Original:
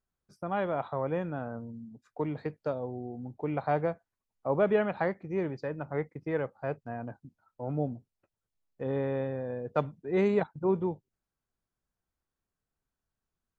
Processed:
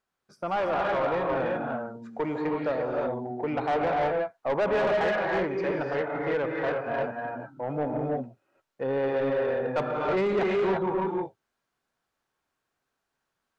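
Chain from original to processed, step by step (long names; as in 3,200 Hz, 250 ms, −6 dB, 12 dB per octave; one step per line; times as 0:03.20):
reverb whose tail is shaped and stops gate 370 ms rising, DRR 0 dB
mid-hump overdrive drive 24 dB, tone 2,700 Hz, clips at −10.5 dBFS
level −6.5 dB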